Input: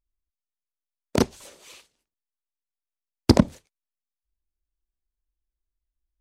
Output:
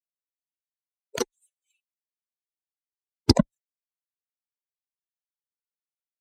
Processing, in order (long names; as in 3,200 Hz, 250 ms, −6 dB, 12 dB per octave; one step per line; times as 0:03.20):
spectral dynamics exaggerated over time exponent 3
dynamic equaliser 5,600 Hz, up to +6 dB, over −47 dBFS, Q 1.2